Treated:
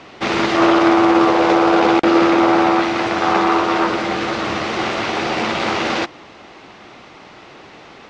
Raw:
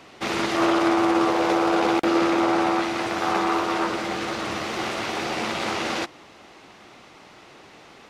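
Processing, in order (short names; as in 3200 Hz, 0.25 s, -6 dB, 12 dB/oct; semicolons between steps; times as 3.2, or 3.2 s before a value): Bessel low-pass 4900 Hz, order 8; gain +7.5 dB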